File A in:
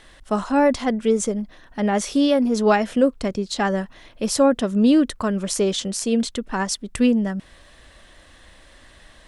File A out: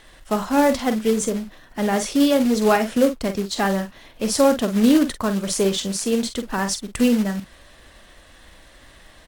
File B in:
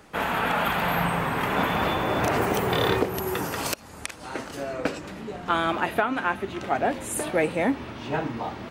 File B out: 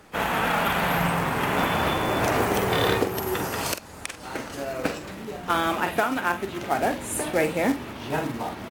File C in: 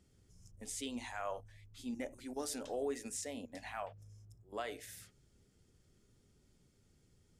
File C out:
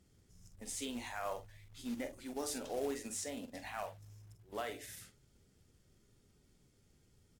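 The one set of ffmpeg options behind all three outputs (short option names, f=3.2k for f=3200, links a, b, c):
-filter_complex "[0:a]asplit=2[a][b];[b]adelay=46,volume=-9.5dB[c];[a][c]amix=inputs=2:normalize=0,acrusher=bits=4:mode=log:mix=0:aa=0.000001" -ar 48000 -c:a aac -b:a 64k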